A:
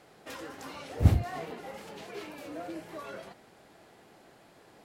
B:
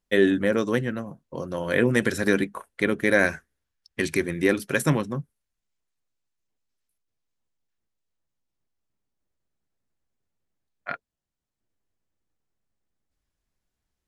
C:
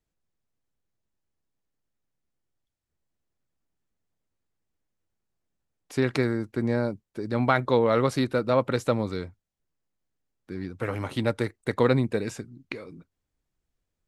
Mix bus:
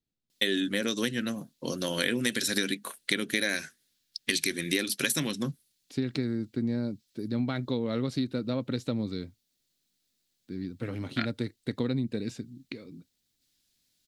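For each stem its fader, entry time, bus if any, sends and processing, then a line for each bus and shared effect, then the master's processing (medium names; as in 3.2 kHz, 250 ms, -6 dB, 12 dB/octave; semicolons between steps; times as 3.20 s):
mute
+0.5 dB, 0.30 s, no send, tilt EQ +4 dB/octave; wow and flutter 27 cents
-10.0 dB, 0.00 s, no send, none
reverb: none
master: graphic EQ 125/250/1000/4000 Hz +6/+11/-6/+11 dB; compression 6:1, threshold -25 dBFS, peak gain reduction 13.5 dB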